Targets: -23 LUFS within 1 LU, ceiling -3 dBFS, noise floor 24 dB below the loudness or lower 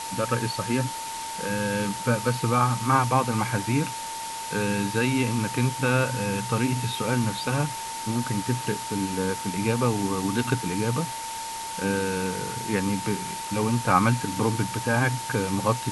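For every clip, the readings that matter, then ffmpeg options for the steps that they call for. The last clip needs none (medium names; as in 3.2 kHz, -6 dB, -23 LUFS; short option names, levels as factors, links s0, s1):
steady tone 900 Hz; tone level -33 dBFS; noise floor -34 dBFS; noise floor target -50 dBFS; loudness -26.0 LUFS; peak level -5.0 dBFS; loudness target -23.0 LUFS
-> -af "bandreject=f=900:w=30"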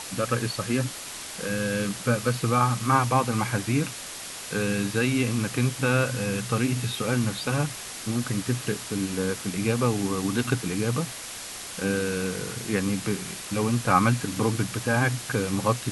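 steady tone not found; noise floor -38 dBFS; noise floor target -51 dBFS
-> -af "afftdn=nr=13:nf=-38"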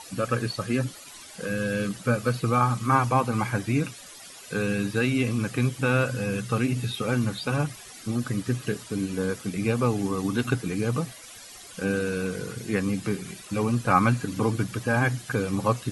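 noise floor -45 dBFS; noise floor target -51 dBFS
-> -af "afftdn=nr=6:nf=-45"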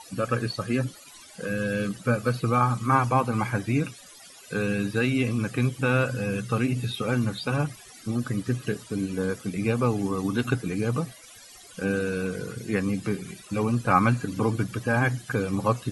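noise floor -48 dBFS; noise floor target -51 dBFS
-> -af "afftdn=nr=6:nf=-48"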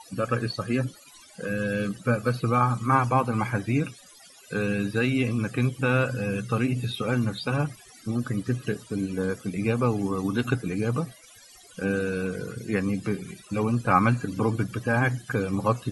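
noise floor -51 dBFS; loudness -26.5 LUFS; peak level -5.5 dBFS; loudness target -23.0 LUFS
-> -af "volume=1.5,alimiter=limit=0.708:level=0:latency=1"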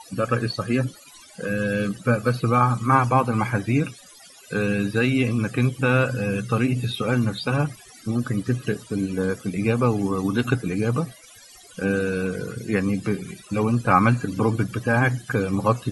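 loudness -23.0 LUFS; peak level -3.0 dBFS; noise floor -48 dBFS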